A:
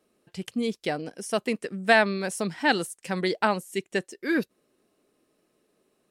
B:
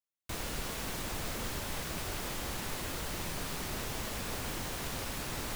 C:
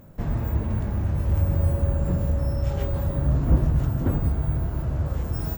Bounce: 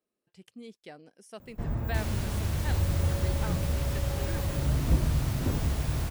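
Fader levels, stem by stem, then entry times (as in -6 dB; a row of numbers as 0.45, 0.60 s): -18.0, -2.0, -5.5 dB; 0.00, 1.65, 1.40 s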